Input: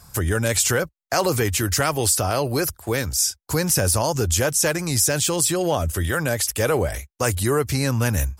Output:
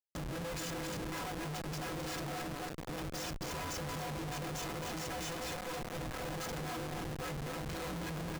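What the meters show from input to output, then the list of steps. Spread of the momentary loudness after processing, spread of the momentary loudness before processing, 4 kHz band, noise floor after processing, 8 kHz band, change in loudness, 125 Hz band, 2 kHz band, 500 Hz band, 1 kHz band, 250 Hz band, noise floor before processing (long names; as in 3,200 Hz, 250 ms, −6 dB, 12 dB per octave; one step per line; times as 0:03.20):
2 LU, 5 LU, −16.5 dB, −44 dBFS, −24.5 dB, −19.0 dB, −18.5 dB, −16.5 dB, −19.5 dB, −14.0 dB, −15.5 dB, −60 dBFS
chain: sub-harmonics by changed cycles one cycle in 2, inverted
downsampling to 16,000 Hz
stiff-string resonator 150 Hz, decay 0.33 s, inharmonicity 0.03
brickwall limiter −29.5 dBFS, peak gain reduction 10.5 dB
repeating echo 267 ms, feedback 46%, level −4 dB
speech leveller 2 s
comparator with hysteresis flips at −39 dBFS
level −2 dB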